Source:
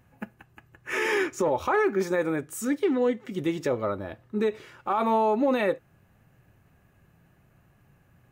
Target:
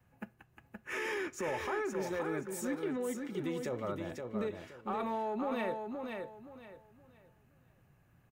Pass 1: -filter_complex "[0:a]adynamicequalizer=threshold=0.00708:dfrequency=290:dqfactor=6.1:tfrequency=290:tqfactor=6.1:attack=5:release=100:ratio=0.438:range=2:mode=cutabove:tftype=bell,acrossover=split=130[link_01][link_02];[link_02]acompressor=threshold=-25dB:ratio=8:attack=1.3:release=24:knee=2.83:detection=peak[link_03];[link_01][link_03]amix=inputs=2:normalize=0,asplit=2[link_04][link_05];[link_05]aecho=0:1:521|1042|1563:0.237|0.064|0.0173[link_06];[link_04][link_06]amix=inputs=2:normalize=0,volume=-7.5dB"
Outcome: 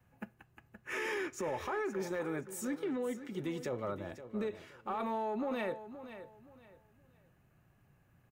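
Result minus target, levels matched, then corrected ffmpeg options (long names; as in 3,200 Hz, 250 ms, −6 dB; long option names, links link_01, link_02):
echo-to-direct −7.5 dB
-filter_complex "[0:a]adynamicequalizer=threshold=0.00708:dfrequency=290:dqfactor=6.1:tfrequency=290:tqfactor=6.1:attack=5:release=100:ratio=0.438:range=2:mode=cutabove:tftype=bell,acrossover=split=130[link_01][link_02];[link_02]acompressor=threshold=-25dB:ratio=8:attack=1.3:release=24:knee=2.83:detection=peak[link_03];[link_01][link_03]amix=inputs=2:normalize=0,asplit=2[link_04][link_05];[link_05]aecho=0:1:521|1042|1563|2084:0.562|0.152|0.041|0.0111[link_06];[link_04][link_06]amix=inputs=2:normalize=0,volume=-7.5dB"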